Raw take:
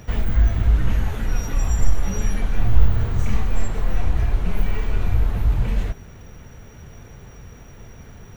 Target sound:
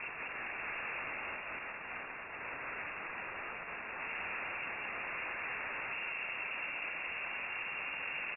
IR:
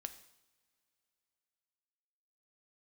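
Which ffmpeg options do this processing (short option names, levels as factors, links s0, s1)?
-filter_complex "[0:a]asettb=1/sr,asplit=3[s0][s1][s2];[s0]atrim=end=1.644[s3];[s1]atrim=start=1.64:end=3.99,asetpts=PTS-STARTPTS,afade=t=in:d=0.004:c=qsin,afade=t=out:st=2.346:d=0.004:c=qsin,highpass=f=73:p=1[s4];[s2]atrim=start=3.986[s5];[s3][s4]acrossfade=d=0.004:c1=hsin:c2=qsin[s6];[s6][s5]acrossfade=d=0.004:c1=qsin:c2=hsin,alimiter=limit=0.1:level=0:latency=1:release=497,aeval=exprs='(mod(70.8*val(0)+1,2)-1)/70.8':c=same,tremolo=f=280:d=0.889,aeval=exprs='0.0141*sin(PI/2*3.55*val(0)/0.0141)':c=same,aecho=1:1:46.65|195.3:0.355|0.631,lowpass=f=2400:t=q:w=0.5098,lowpass=f=2400:t=q:w=0.6013,lowpass=f=2400:t=q:w=0.9,lowpass=f=2400:t=q:w=2.563,afreqshift=-2800"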